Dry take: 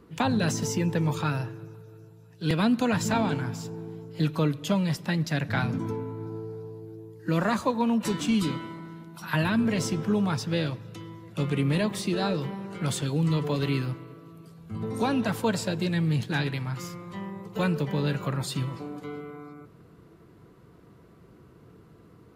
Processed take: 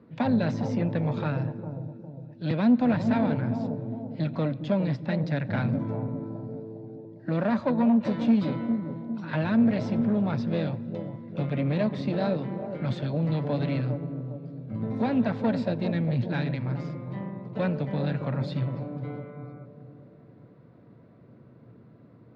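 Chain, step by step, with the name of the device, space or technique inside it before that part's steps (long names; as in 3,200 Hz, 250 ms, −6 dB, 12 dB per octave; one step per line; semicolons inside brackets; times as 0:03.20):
0:06.08–0:07.05: Butterworth high-pass 180 Hz 72 dB per octave
analogue delay pedal into a guitar amplifier (bucket-brigade delay 406 ms, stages 2,048, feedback 49%, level −8.5 dB; tube saturation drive 22 dB, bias 0.6; loudspeaker in its box 94–3,800 Hz, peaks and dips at 120 Hz +9 dB, 240 Hz +9 dB, 400 Hz −4 dB, 580 Hz +9 dB, 1,200 Hz −4 dB, 3,000 Hz −8 dB)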